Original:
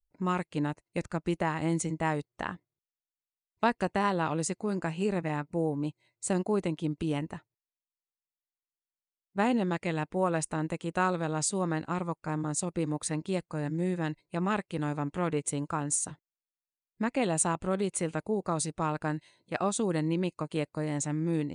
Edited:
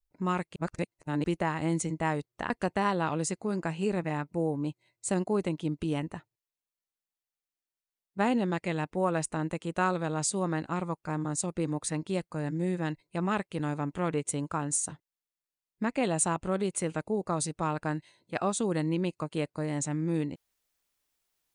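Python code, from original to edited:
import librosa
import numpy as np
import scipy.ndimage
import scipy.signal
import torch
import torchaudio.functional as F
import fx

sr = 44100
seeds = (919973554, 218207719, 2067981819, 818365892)

y = fx.edit(x, sr, fx.reverse_span(start_s=0.56, length_s=0.68),
    fx.cut(start_s=2.5, length_s=1.19), tone=tone)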